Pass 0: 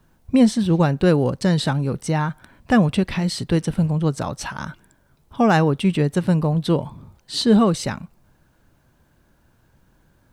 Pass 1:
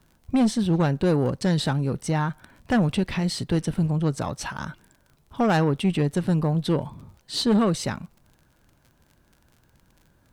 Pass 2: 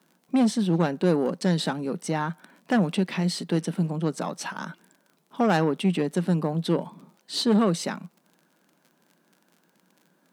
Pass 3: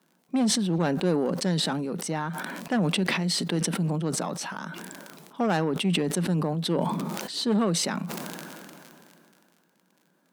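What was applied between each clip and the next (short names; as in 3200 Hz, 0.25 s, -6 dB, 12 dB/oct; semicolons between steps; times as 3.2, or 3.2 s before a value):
crackle 41/s -40 dBFS; tube stage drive 13 dB, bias 0.3; gain -1.5 dB
elliptic high-pass 170 Hz, stop band 40 dB
sustainer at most 22 dB/s; gain -3.5 dB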